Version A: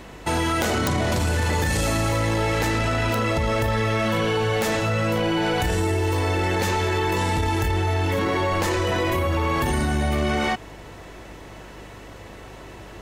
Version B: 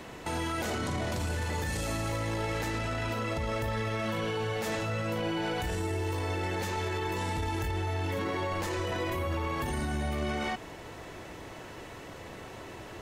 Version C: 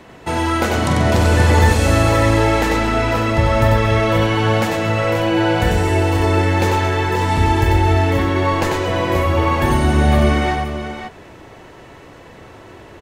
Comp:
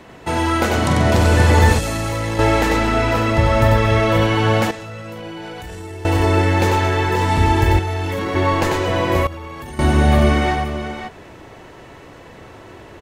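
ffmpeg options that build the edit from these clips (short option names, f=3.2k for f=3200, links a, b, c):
-filter_complex "[0:a]asplit=2[a][b];[1:a]asplit=2[c][d];[2:a]asplit=5[e][f][g][h][i];[e]atrim=end=1.792[j];[a]atrim=start=1.788:end=2.392[k];[f]atrim=start=2.388:end=4.712[l];[c]atrim=start=4.708:end=6.052[m];[g]atrim=start=6.048:end=7.792[n];[b]atrim=start=7.788:end=8.352[o];[h]atrim=start=8.348:end=9.272[p];[d]atrim=start=9.268:end=9.792[q];[i]atrim=start=9.788[r];[j][k]acrossfade=d=0.004:c1=hsin:c2=hsin[s];[s][l]acrossfade=d=0.004:c1=hsin:c2=hsin[t];[t][m]acrossfade=d=0.004:c1=hsin:c2=hsin[u];[u][n]acrossfade=d=0.004:c1=hsin:c2=hsin[v];[v][o]acrossfade=d=0.004:c1=hsin:c2=hsin[w];[w][p]acrossfade=d=0.004:c1=hsin:c2=hsin[x];[x][q]acrossfade=d=0.004:c1=hsin:c2=hsin[y];[y][r]acrossfade=d=0.004:c1=hsin:c2=hsin"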